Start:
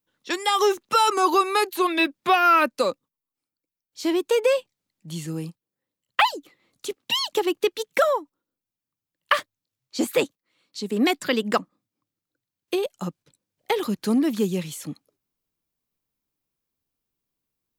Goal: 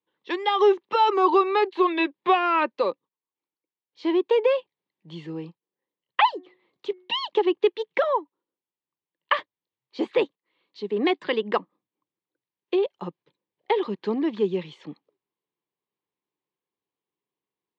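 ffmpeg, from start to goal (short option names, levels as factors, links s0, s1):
-filter_complex "[0:a]asettb=1/sr,asplit=3[s0][s1][s2];[s0]atrim=end=6.224[s3];[s1]atrim=start=6.22:end=7.16,asetpts=PTS-STARTPTS,afade=t=in:d=0.004:c=qsin,afade=t=out:st=0.936:d=0.004:c=qsin,bandreject=f=364.4:t=h:w=4,bandreject=f=728.8:t=h:w=4,bandreject=f=1093.2:t=h:w=4,bandreject=f=1457.6:t=h:w=4,bandreject=f=1822:t=h:w=4,bandreject=f=2186.4:t=h:w=4[s4];[s2]atrim=start=7.156[s5];[s3][s4]acrossfade=d=0.004:c1=hsin:c2=qsin[s6];[s6][s5]acrossfade=d=0.004:c1=qsin:c2=hsin,highpass=230,equalizer=f=250:t=q:w=4:g=-8,equalizer=f=390:t=q:w=4:g=5,equalizer=f=640:t=q:w=4:g=-5,equalizer=f=960:t=q:w=4:g=5,equalizer=f=1400:t=q:w=4:g=-9,equalizer=f=2500:t=q:w=4:g=-4,lowpass=f=3300:w=0.5412,lowpass=f=3300:w=1.3066"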